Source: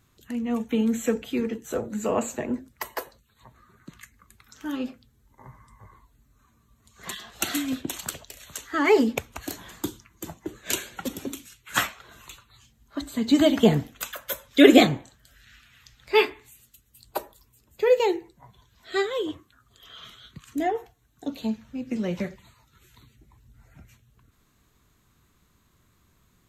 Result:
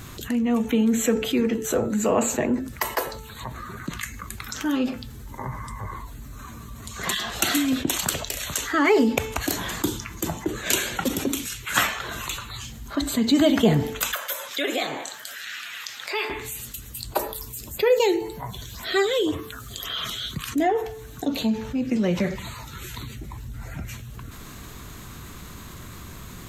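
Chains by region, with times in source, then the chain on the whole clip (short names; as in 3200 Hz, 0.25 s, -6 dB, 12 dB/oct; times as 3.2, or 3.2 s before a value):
14.15–16.3 HPF 590 Hz + compressor 2:1, threshold -44 dBFS
17.19–20.49 high shelf 4100 Hz +7.5 dB + LFO notch sine 1.9 Hz 910–7800 Hz
whole clip: de-hum 439.4 Hz, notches 17; fast leveller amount 50%; gain -1.5 dB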